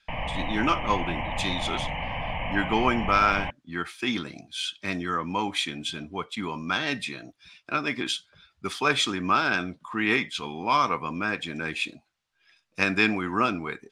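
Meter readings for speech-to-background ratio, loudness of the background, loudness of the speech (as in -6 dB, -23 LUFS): 5.0 dB, -32.0 LUFS, -27.0 LUFS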